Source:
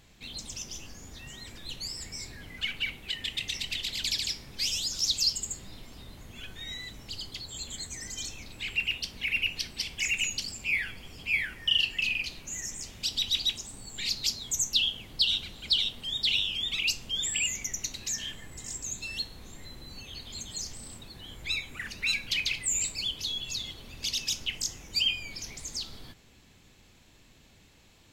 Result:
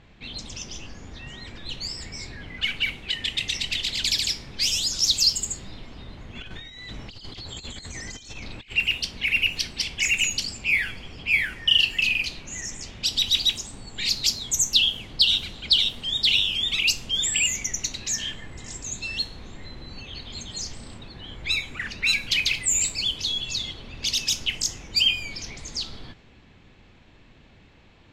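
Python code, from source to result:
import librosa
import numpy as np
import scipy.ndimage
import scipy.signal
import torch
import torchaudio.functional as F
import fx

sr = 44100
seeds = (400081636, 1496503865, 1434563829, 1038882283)

y = fx.env_lowpass(x, sr, base_hz=2600.0, full_db=-26.5)
y = fx.over_compress(y, sr, threshold_db=-44.0, ratio=-0.5, at=(6.35, 8.73))
y = y * librosa.db_to_amplitude(6.5)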